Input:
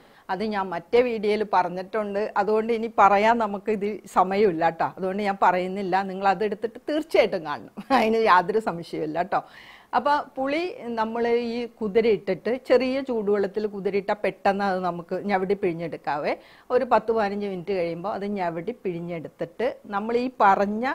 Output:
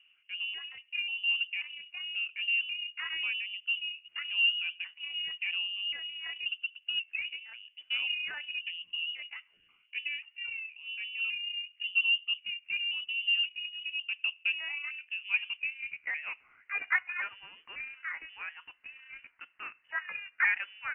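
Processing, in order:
pitch shifter gated in a rhythm +8 semitones, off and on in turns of 538 ms
band-pass filter sweep 360 Hz → 1,500 Hz, 0:13.84–0:16.88
voice inversion scrambler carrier 3,200 Hz
level −4 dB

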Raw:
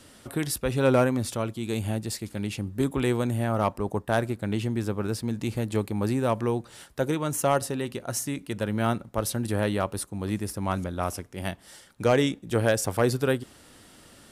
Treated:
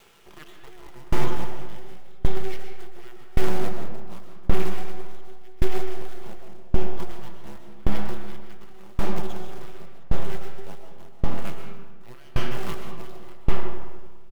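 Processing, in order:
elliptic band-stop filter 120–620 Hz, stop band 40 dB
comb filter 6 ms, depth 46%
in parallel at −1.5 dB: brickwall limiter −22.5 dBFS, peak gain reduction 10.5 dB
on the sum: frequency shifter −490 Hz
downsampling to 8,000 Hz
half-wave rectification
log-companded quantiser 4 bits
comb and all-pass reverb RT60 3.7 s, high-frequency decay 0.3×, pre-delay 85 ms, DRR −2 dB
tremolo with a ramp in dB decaying 0.89 Hz, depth 27 dB

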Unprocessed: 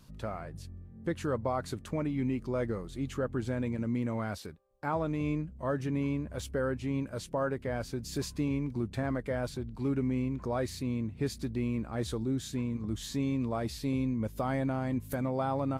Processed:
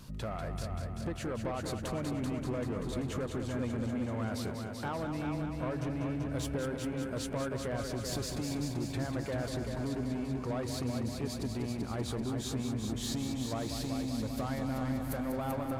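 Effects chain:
downward compressor, threshold −38 dBFS, peak gain reduction 11 dB
soft clipping −38 dBFS, distortion −14 dB
echo machine with several playback heads 193 ms, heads first and second, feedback 63%, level −8 dB
level +7 dB

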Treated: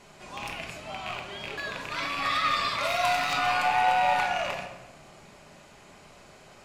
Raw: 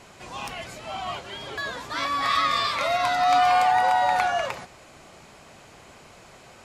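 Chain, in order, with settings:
loose part that buzzes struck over −41 dBFS, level −17 dBFS
0:02.83–0:03.33: high-shelf EQ 5,900 Hz +9 dB
convolution reverb RT60 1.1 s, pre-delay 5 ms, DRR 1.5 dB
level −5.5 dB

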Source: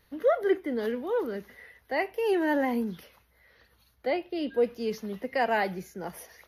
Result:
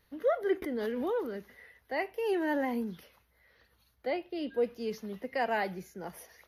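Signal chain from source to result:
0:00.62–0:01.38: background raised ahead of every attack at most 26 dB per second
level −4.5 dB

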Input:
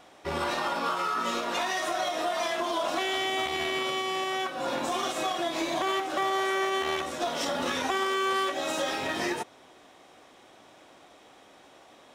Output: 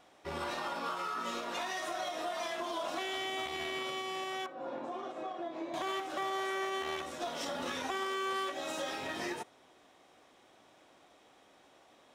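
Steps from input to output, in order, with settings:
0:04.46–0:05.74: resonant band-pass 440 Hz, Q 0.67
convolution reverb, pre-delay 55 ms, DRR 26 dB
level −8 dB

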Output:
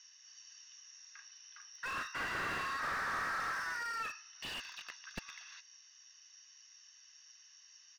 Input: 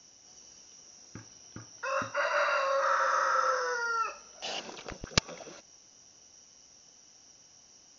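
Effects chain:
Butterworth high-pass 1,300 Hz 36 dB per octave
high-frequency loss of the air 94 metres
comb filter 1.1 ms, depth 61%
slew-rate limiting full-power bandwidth 22 Hz
level +1.5 dB

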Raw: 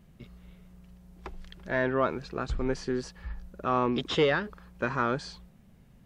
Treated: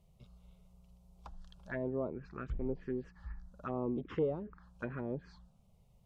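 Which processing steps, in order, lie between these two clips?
treble cut that deepens with the level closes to 690 Hz, closed at −24 dBFS
phaser swept by the level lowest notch 260 Hz, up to 1,700 Hz, full sweep at −24.5 dBFS
level −6.5 dB

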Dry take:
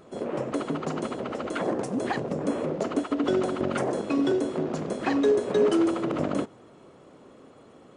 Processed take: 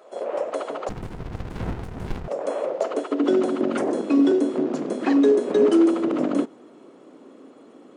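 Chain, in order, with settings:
high-pass filter sweep 580 Hz → 270 Hz, 0:02.84–0:03.34
0:00.89–0:02.28: windowed peak hold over 65 samples

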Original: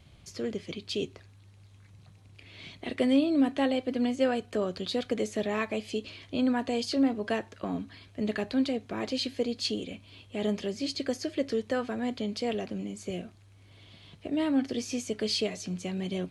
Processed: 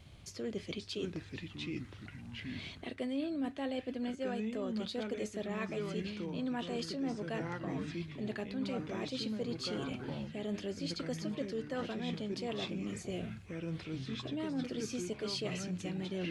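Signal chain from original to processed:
delay with pitch and tempo change per echo 464 ms, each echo −4 semitones, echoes 3, each echo −6 dB
reversed playback
downward compressor 4 to 1, threshold −36 dBFS, peak gain reduction 14 dB
reversed playback

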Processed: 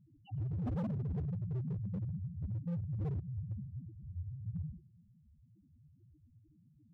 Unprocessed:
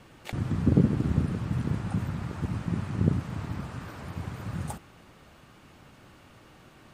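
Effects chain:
spectral peaks only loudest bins 1
tape delay 105 ms, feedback 53%, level −17.5 dB
hard clipping −35.5 dBFS, distortion −8 dB
level +2 dB

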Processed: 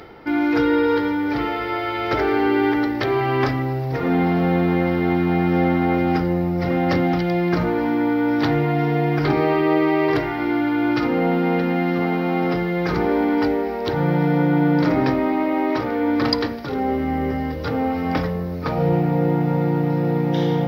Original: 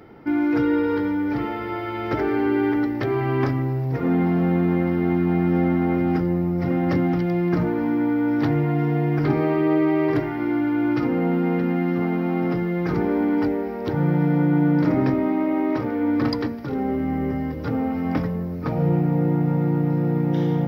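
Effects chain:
octave-band graphic EQ 125/250/4,000 Hz −6/−7/+7 dB
reversed playback
upward compression, threshold −33 dBFS
reversed playback
convolution reverb, pre-delay 34 ms, DRR 11.5 dB
level +5 dB

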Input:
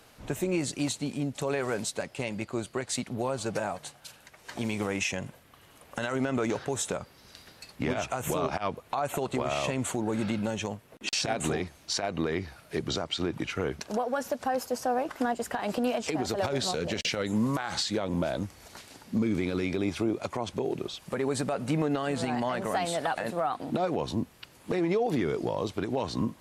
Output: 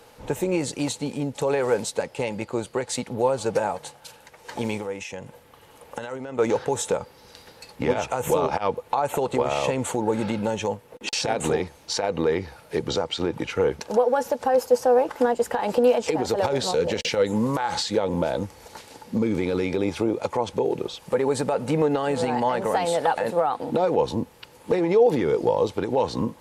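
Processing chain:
0:04.77–0:06.39: downward compressor 6 to 1, threshold −36 dBFS, peak gain reduction 11.5 dB
hollow resonant body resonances 490/860 Hz, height 12 dB, ringing for 40 ms
level +2.5 dB

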